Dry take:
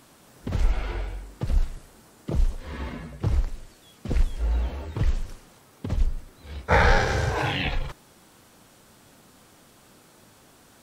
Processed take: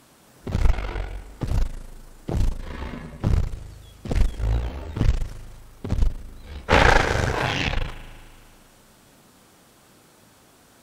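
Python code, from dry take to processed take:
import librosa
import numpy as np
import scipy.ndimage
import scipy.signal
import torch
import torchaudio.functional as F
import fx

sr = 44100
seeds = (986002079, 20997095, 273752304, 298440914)

y = fx.rev_spring(x, sr, rt60_s=2.1, pass_ms=(38,), chirp_ms=35, drr_db=11.0)
y = fx.cheby_harmonics(y, sr, harmonics=(4, 8), levels_db=(-8, -22), full_scale_db=-3.5)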